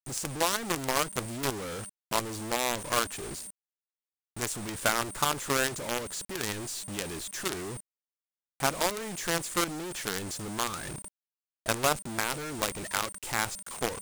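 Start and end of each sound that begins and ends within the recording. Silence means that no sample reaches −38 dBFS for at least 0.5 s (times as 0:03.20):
0:04.36–0:07.77
0:08.60–0:11.05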